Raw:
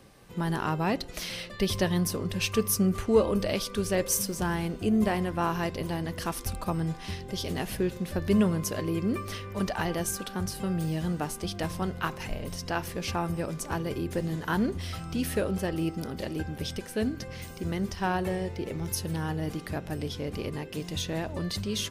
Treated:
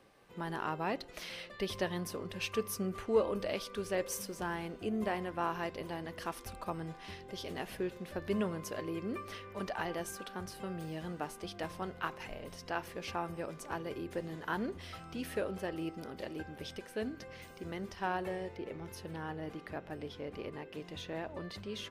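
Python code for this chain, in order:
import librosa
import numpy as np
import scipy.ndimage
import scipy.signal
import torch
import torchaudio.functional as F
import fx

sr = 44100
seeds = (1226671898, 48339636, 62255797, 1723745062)

y = fx.bass_treble(x, sr, bass_db=-10, treble_db=fx.steps((0.0, -8.0), (18.56, -15.0)))
y = F.gain(torch.from_numpy(y), -5.5).numpy()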